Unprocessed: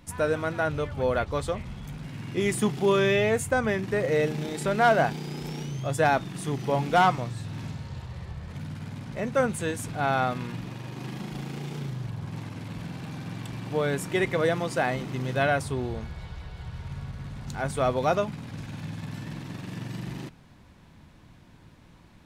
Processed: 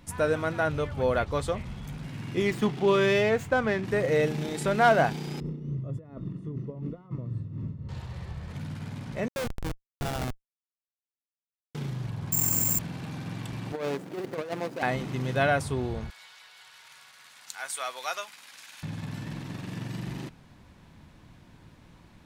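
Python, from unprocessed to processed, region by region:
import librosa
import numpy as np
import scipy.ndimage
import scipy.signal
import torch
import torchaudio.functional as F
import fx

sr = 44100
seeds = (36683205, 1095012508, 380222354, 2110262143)

y = fx.chain(x, sr, fx.lowpass(hz=5100.0, slope=12),
    fx.low_shelf(hz=72.0, db=-11.5),
    fx.running_max(window=3), at=(2.42, 3.85))
y = fx.chain(y, sr, fx.tremolo_shape(shape='triangle', hz=3.7, depth_pct=65),
    fx.over_compress(threshold_db=-33.0, ratio=-1.0),
    fx.moving_average(points=56), at=(5.4, 7.89))
y = fx.chain(y, sr, fx.highpass(hz=140.0, slope=12),
    fx.schmitt(flips_db=-23.0), at=(9.28, 11.75))
y = fx.chain(y, sr, fx.resample_bad(factor=6, down='filtered', up='zero_stuff'),
    fx.env_flatten(amount_pct=100), at=(12.32, 12.79))
y = fx.chain(y, sr, fx.median_filter(points=41),
    fx.bessel_highpass(hz=340.0, order=2),
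    fx.over_compress(threshold_db=-31.0, ratio=-0.5), at=(13.72, 14.83))
y = fx.chain(y, sr, fx.highpass(hz=1400.0, slope=12),
    fx.high_shelf(hz=5600.0, db=9.5), at=(16.1, 18.83))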